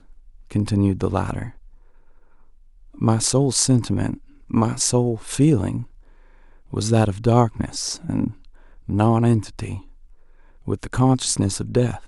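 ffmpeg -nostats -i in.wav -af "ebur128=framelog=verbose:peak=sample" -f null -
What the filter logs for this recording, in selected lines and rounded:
Integrated loudness:
  I:         -21.0 LUFS
  Threshold: -32.5 LUFS
Loudness range:
  LRA:         3.8 LU
  Threshold: -42.2 LUFS
  LRA low:   -24.3 LUFS
  LRA high:  -20.5 LUFS
Sample peak:
  Peak:       -1.5 dBFS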